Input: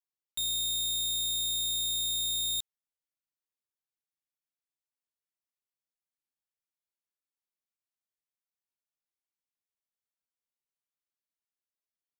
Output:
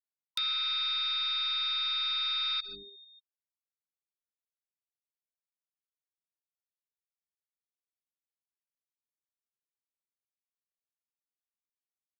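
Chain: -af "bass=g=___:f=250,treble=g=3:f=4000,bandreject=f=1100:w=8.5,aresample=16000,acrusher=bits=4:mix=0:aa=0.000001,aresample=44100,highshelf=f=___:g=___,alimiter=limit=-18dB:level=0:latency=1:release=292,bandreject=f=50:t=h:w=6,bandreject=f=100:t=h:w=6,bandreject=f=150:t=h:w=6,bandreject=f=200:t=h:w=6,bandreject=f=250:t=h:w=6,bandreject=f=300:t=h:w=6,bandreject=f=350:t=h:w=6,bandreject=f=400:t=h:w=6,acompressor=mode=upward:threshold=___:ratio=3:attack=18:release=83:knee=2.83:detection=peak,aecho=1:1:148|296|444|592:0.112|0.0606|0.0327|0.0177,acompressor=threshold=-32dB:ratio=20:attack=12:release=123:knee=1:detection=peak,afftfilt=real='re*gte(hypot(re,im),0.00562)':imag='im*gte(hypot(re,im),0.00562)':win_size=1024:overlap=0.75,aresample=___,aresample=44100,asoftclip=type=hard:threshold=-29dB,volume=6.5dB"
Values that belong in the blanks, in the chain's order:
-10, 2000, 11, -34dB, 11025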